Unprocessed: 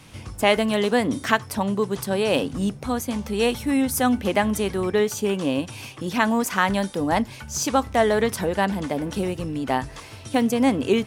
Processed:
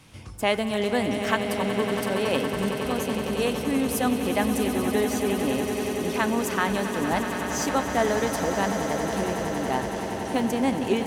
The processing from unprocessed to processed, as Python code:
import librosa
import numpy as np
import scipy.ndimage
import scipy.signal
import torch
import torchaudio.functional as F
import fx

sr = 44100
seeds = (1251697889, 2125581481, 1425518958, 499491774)

y = fx.echo_swell(x, sr, ms=93, loudest=8, wet_db=-12)
y = F.gain(torch.from_numpy(y), -5.0).numpy()